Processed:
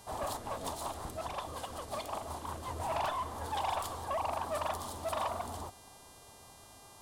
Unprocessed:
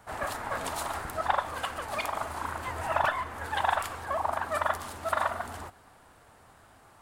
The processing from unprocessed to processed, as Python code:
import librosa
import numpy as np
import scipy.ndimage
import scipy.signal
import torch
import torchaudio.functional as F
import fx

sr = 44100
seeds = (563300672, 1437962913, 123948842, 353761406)

y = fx.band_shelf(x, sr, hz=1900.0, db=-12.5, octaves=1.2)
y = 10.0 ** (-29.0 / 20.0) * np.tanh(y / 10.0 ** (-29.0 / 20.0))
y = fx.rotary(y, sr, hz=5.5, at=(0.37, 2.8))
y = fx.dmg_buzz(y, sr, base_hz=400.0, harmonics=30, level_db=-59.0, tilt_db=0, odd_only=False)